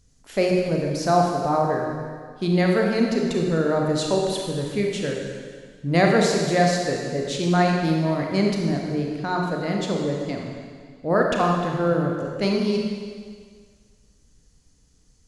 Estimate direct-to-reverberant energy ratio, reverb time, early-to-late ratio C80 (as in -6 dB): -0.5 dB, 1.8 s, 3.0 dB